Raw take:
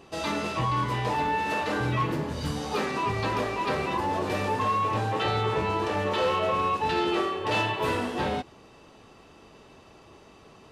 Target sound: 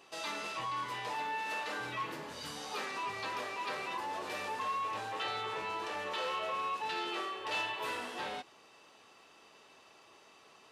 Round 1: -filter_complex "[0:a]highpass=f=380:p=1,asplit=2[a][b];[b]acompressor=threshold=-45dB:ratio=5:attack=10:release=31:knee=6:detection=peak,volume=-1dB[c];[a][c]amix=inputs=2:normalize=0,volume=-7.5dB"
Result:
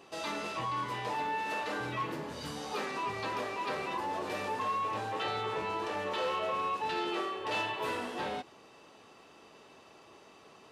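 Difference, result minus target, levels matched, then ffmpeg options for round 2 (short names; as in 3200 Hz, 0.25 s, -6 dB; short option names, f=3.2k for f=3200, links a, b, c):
500 Hz band +3.0 dB
-filter_complex "[0:a]highpass=f=1.2k:p=1,asplit=2[a][b];[b]acompressor=threshold=-45dB:ratio=5:attack=10:release=31:knee=6:detection=peak,volume=-1dB[c];[a][c]amix=inputs=2:normalize=0,volume=-7.5dB"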